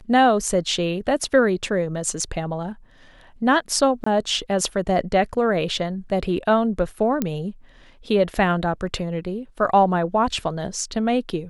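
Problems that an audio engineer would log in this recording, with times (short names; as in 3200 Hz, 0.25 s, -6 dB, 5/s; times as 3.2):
4.04–4.06 gap 24 ms
7.22 pop -9 dBFS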